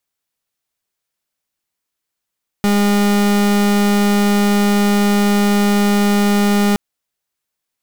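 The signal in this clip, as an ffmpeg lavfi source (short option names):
-f lavfi -i "aevalsrc='0.211*(2*lt(mod(204*t,1),0.38)-1)':d=4.12:s=44100"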